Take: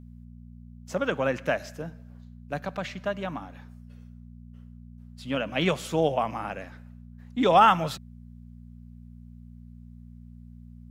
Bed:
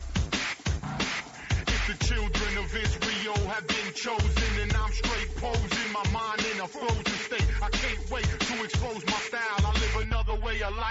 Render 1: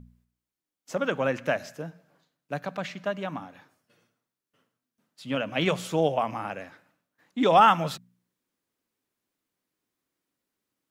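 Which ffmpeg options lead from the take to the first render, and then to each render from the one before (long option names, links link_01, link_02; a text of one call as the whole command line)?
ffmpeg -i in.wav -af "bandreject=frequency=60:width_type=h:width=4,bandreject=frequency=120:width_type=h:width=4,bandreject=frequency=180:width_type=h:width=4,bandreject=frequency=240:width_type=h:width=4" out.wav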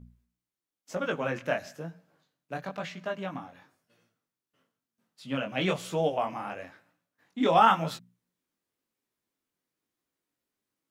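ffmpeg -i in.wav -af "flanger=delay=17:depth=6.7:speed=1" out.wav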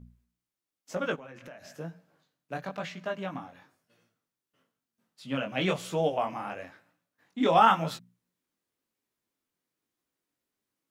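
ffmpeg -i in.wav -filter_complex "[0:a]asplit=3[link_01][link_02][link_03];[link_01]afade=type=out:start_time=1.15:duration=0.02[link_04];[link_02]acompressor=threshold=-43dB:ratio=8:attack=3.2:release=140:knee=1:detection=peak,afade=type=in:start_time=1.15:duration=0.02,afade=type=out:start_time=1.72:duration=0.02[link_05];[link_03]afade=type=in:start_time=1.72:duration=0.02[link_06];[link_04][link_05][link_06]amix=inputs=3:normalize=0" out.wav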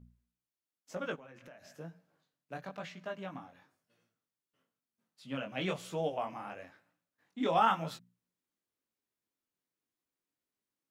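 ffmpeg -i in.wav -af "volume=-7dB" out.wav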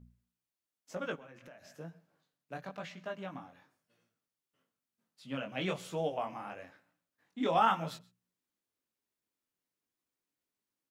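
ffmpeg -i in.wav -af "aecho=1:1:127:0.0668" out.wav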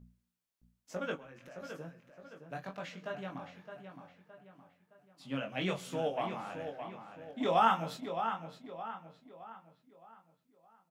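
ffmpeg -i in.wav -filter_complex "[0:a]asplit=2[link_01][link_02];[link_02]adelay=22,volume=-9dB[link_03];[link_01][link_03]amix=inputs=2:normalize=0,asplit=2[link_04][link_05];[link_05]adelay=616,lowpass=frequency=3600:poles=1,volume=-8dB,asplit=2[link_06][link_07];[link_07]adelay=616,lowpass=frequency=3600:poles=1,volume=0.43,asplit=2[link_08][link_09];[link_09]adelay=616,lowpass=frequency=3600:poles=1,volume=0.43,asplit=2[link_10][link_11];[link_11]adelay=616,lowpass=frequency=3600:poles=1,volume=0.43,asplit=2[link_12][link_13];[link_13]adelay=616,lowpass=frequency=3600:poles=1,volume=0.43[link_14];[link_04][link_06][link_08][link_10][link_12][link_14]amix=inputs=6:normalize=0" out.wav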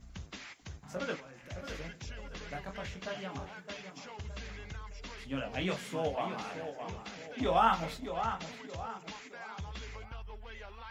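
ffmpeg -i in.wav -i bed.wav -filter_complex "[1:a]volume=-17.5dB[link_01];[0:a][link_01]amix=inputs=2:normalize=0" out.wav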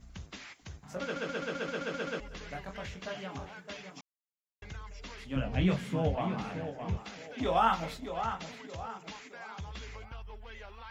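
ffmpeg -i in.wav -filter_complex "[0:a]asettb=1/sr,asplit=3[link_01][link_02][link_03];[link_01]atrim=end=5.364[link_04];[link_02]atrim=start=5.36:end=6.97,asetpts=PTS-STARTPTS,afade=type=in:duration=0.004:curve=qsin,afade=type=out:start_time=1.606:duration=0.004:curve=qsin,bass=frequency=250:gain=13,treble=frequency=4000:gain=-5[link_05];[link_03]atrim=start=6.966[link_06];[link_04][link_05]acrossfade=duration=0.004:curve1=hsin:curve2=qsin[link_07];[link_07][link_06]acrossfade=duration=0.004:curve1=qsin:curve2=hsin,asplit=12[link_08][link_09][link_10][link_11][link_12][link_13][link_14][link_15][link_16][link_17][link_18][link_19];[link_08]atrim=end=1.162[link_20];[link_09]atrim=start=1.028:end=1.162[link_21];[link_10]atrim=start=1.028:end=1.162[link_22];[link_11]atrim=start=1.028:end=1.162[link_23];[link_12]atrim=start=1.028:end=1.162[link_24];[link_13]atrim=start=1.028:end=1.162[link_25];[link_14]atrim=start=1.028:end=1.162[link_26];[link_15]atrim=start=1.028:end=1.162[link_27];[link_16]atrim=start=1.028:end=1.162[link_28];[link_17]atrim=start=2.198:end=4.01,asetpts=PTS-STARTPTS,afade=type=out:start_time=1.808:duration=0.004:curve=hsin[link_29];[link_18]atrim=start=4.01:end=4.62,asetpts=PTS-STARTPTS,volume=0[link_30];[link_19]atrim=start=4.62,asetpts=PTS-STARTPTS,afade=type=in:duration=0.004:curve=hsin[link_31];[link_20][link_21]acrossfade=duration=0.004:curve1=hsin:curve2=hsin[link_32];[link_32][link_22]acrossfade=duration=0.004:curve1=hsin:curve2=hsin[link_33];[link_33][link_23]acrossfade=duration=0.004:curve1=hsin:curve2=hsin[link_34];[link_34][link_24]acrossfade=duration=0.004:curve1=hsin:curve2=hsin[link_35];[link_35][link_25]acrossfade=duration=0.004:curve1=hsin:curve2=hsin[link_36];[link_36][link_26]acrossfade=duration=0.004:curve1=hsin:curve2=hsin[link_37];[link_37][link_27]acrossfade=duration=0.004:curve1=hsin:curve2=hsin[link_38];[link_38][link_28]acrossfade=duration=0.004:curve1=hsin:curve2=hsin[link_39];[link_29][link_30][link_31]concat=n=3:v=0:a=1[link_40];[link_39][link_40]acrossfade=duration=0.004:curve1=hsin:curve2=hsin" out.wav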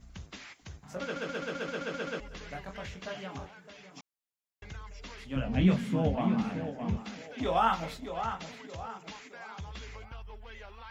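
ffmpeg -i in.wav -filter_complex "[0:a]asettb=1/sr,asplit=3[link_01][link_02][link_03];[link_01]atrim=end=1.154[link_04];[link_02]atrim=start=1.15:end=1.75,asetpts=PTS-STARTPTS,afade=type=in:duration=0.004:curve=qsin,afade=type=out:start_time=0.596:duration=0.004:curve=qsin,asoftclip=type=hard:threshold=-27dB[link_05];[link_03]atrim=start=1.746[link_06];[link_04][link_05]acrossfade=duration=0.004:curve1=hsin:curve2=qsin[link_07];[link_07][link_06]acrossfade=duration=0.004:curve1=qsin:curve2=hsin,asettb=1/sr,asplit=3[link_08][link_09][link_10];[link_08]atrim=end=3.464[link_11];[link_09]atrim=start=3.46:end=3.97,asetpts=PTS-STARTPTS,afade=type=in:duration=0.004:curve=qsin,afade=type=out:start_time=0.506:duration=0.004:curve=qsin,acompressor=threshold=-49dB:ratio=3:attack=3.2:release=140:knee=1:detection=peak[link_12];[link_10]atrim=start=3.966[link_13];[link_11][link_12]acrossfade=duration=0.004:curve1=hsin:curve2=qsin[link_14];[link_14][link_13]acrossfade=duration=0.004:curve1=qsin:curve2=hsin,asettb=1/sr,asplit=3[link_15][link_16][link_17];[link_15]atrim=end=5.484[link_18];[link_16]atrim=start=5.48:end=7.22,asetpts=PTS-STARTPTS,afade=type=in:duration=0.004:curve=qsin,afade=type=out:start_time=1.736:duration=0.004:curve=qsin,equalizer=frequency=230:width_type=o:width=0.42:gain=13[link_19];[link_17]atrim=start=7.216[link_20];[link_18][link_19]acrossfade=duration=0.004:curve1=hsin:curve2=qsin[link_21];[link_21][link_20]acrossfade=duration=0.004:curve1=qsin:curve2=hsin" out.wav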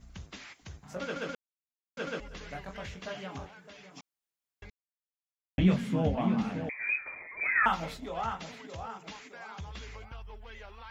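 ffmpeg -i in.wav -filter_complex "[0:a]asettb=1/sr,asplit=3[link_01][link_02][link_03];[link_01]atrim=end=6.694[link_04];[link_02]atrim=start=6.69:end=7.66,asetpts=PTS-STARTPTS,afade=type=in:duration=0.004:curve=qsin,afade=type=out:start_time=0.966:duration=0.004:curve=qsin,lowpass=frequency=2200:width_type=q:width=0.5098,lowpass=frequency=2200:width_type=q:width=0.6013,lowpass=frequency=2200:width_type=q:width=0.9,lowpass=frequency=2200:width_type=q:width=2.563,afreqshift=-2600[link_05];[link_03]atrim=start=7.656[link_06];[link_04][link_05]acrossfade=duration=0.004:curve1=hsin:curve2=qsin[link_07];[link_07][link_06]acrossfade=duration=0.004:curve1=qsin:curve2=hsin,asplit=5[link_08][link_09][link_10][link_11][link_12];[link_08]atrim=end=1.35,asetpts=PTS-STARTPTS,afade=type=out:start_time=1.346:duration=0.004:curve=hsin[link_13];[link_09]atrim=start=1.35:end=1.97,asetpts=PTS-STARTPTS,volume=0[link_14];[link_10]atrim=start=1.97:end=4.7,asetpts=PTS-STARTPTS,afade=type=in:duration=0.004:curve=hsin,afade=type=out:start_time=2.726:duration=0.004:curve=hsin[link_15];[link_11]atrim=start=4.7:end=5.58,asetpts=PTS-STARTPTS,volume=0[link_16];[link_12]atrim=start=5.58,asetpts=PTS-STARTPTS,afade=type=in:duration=0.004:curve=hsin[link_17];[link_13][link_14][link_15][link_16][link_17]concat=n=5:v=0:a=1" out.wav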